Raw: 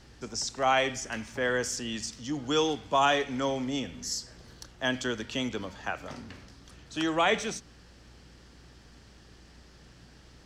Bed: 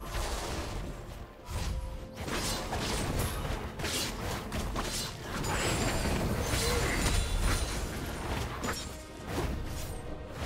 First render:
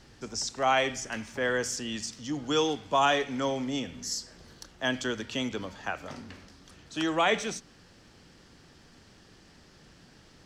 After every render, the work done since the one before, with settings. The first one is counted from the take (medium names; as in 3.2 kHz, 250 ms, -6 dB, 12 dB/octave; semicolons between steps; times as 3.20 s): de-hum 60 Hz, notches 2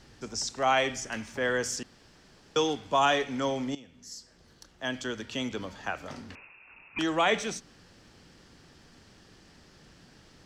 1.83–2.56 s: room tone; 3.75–5.73 s: fade in, from -17.5 dB; 6.35–6.99 s: frequency inversion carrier 2.7 kHz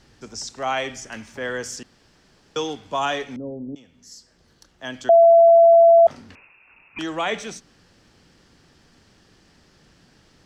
3.36–3.76 s: inverse Chebyshev low-pass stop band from 3 kHz, stop band 80 dB; 5.09–6.07 s: bleep 672 Hz -8 dBFS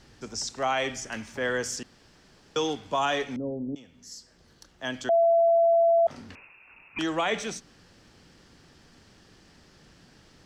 compression, threshold -16 dBFS, peak gain reduction 6 dB; peak limiter -17 dBFS, peak gain reduction 8 dB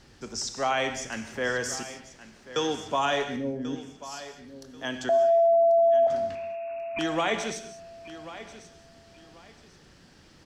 feedback delay 1088 ms, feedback 26%, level -15 dB; gated-style reverb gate 230 ms flat, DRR 8.5 dB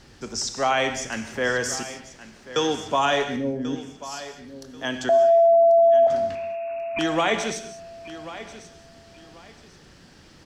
trim +4.5 dB